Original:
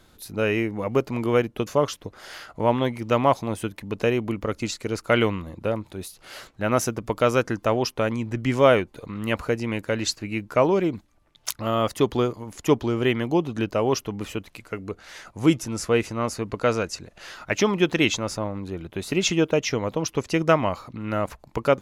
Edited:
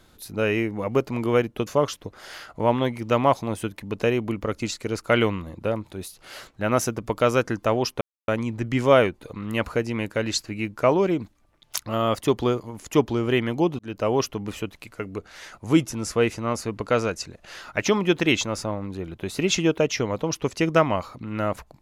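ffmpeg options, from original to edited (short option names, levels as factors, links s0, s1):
-filter_complex "[0:a]asplit=3[s0][s1][s2];[s0]atrim=end=8.01,asetpts=PTS-STARTPTS,afade=t=out:st=8.006:d=0.004:c=hsin,apad=pad_dur=0.27[s3];[s1]atrim=start=8.01:end=13.52,asetpts=PTS-STARTPTS,afade=t=in:d=0.004:c=hsin,afade=t=out:st=5.506:d=0.004:c=hsin[s4];[s2]atrim=start=13.52,asetpts=PTS-STARTPTS,afade=t=in:d=0.27[s5];[s3][s4][s5]concat=n=3:v=0:a=1"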